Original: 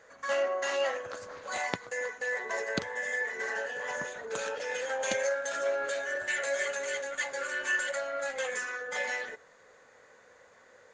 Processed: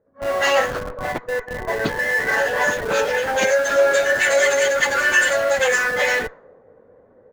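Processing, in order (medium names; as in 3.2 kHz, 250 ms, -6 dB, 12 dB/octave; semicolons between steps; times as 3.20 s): level rider gain up to 15.5 dB; plain phase-vocoder stretch 0.67×; level-controlled noise filter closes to 340 Hz, open at -17.5 dBFS; in parallel at -10.5 dB: Schmitt trigger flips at -28.5 dBFS; on the sum: trim +2.5 dB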